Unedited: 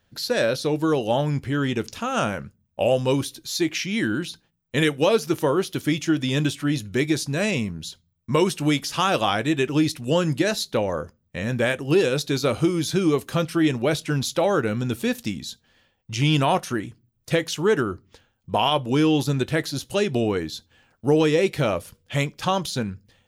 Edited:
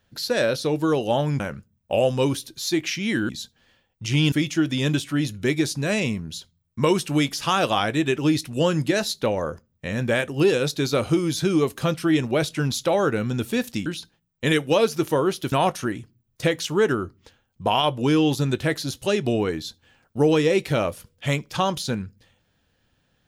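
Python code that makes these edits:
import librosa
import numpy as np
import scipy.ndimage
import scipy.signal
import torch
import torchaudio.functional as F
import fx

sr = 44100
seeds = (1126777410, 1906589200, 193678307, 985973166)

y = fx.edit(x, sr, fx.cut(start_s=1.4, length_s=0.88),
    fx.swap(start_s=4.17, length_s=1.66, other_s=15.37, other_length_s=1.03), tone=tone)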